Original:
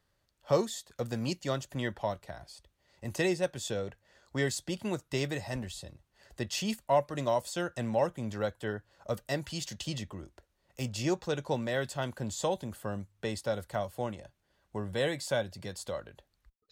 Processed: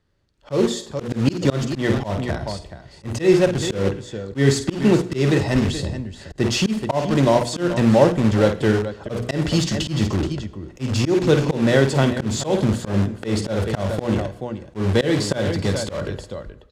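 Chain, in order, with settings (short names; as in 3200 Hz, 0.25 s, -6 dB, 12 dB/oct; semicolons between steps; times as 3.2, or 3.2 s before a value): resonant low shelf 490 Hz +6 dB, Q 1.5; notches 60/120/180/240/300/360/420/480 Hz; AGC gain up to 16 dB; tapped delay 51/428 ms -11/-14 dB; in parallel at -8.5 dB: wrapped overs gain 18 dB; on the sum: air absorption 61 m; reverb RT60 0.75 s, pre-delay 64 ms, DRR 17.5 dB; auto swell 0.154 s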